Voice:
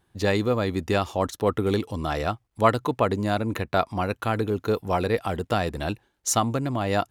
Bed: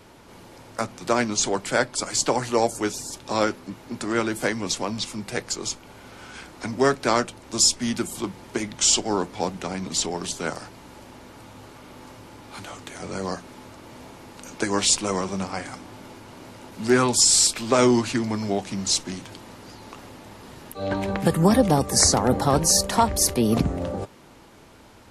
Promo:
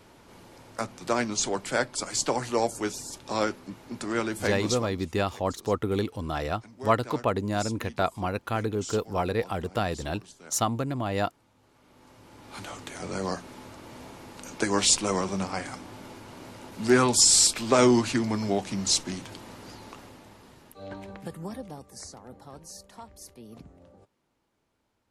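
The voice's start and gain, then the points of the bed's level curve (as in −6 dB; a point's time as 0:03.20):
4.25 s, −3.5 dB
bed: 0:04.76 −4.5 dB
0:04.99 −20.5 dB
0:11.56 −20.5 dB
0:12.62 −1.5 dB
0:19.74 −1.5 dB
0:22.08 −26 dB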